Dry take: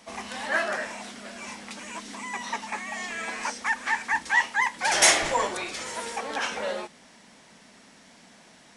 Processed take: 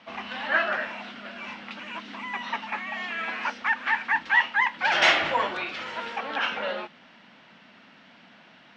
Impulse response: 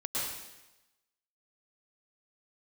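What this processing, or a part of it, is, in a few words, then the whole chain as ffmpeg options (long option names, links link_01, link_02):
guitar cabinet: -af "highpass=92,equalizer=frequency=430:width_type=q:width=4:gain=-5,equalizer=frequency=1400:width_type=q:width=4:gain=6,equalizer=frequency=2800:width_type=q:width=4:gain=6,lowpass=frequency=3900:width=0.5412,lowpass=frequency=3900:width=1.3066"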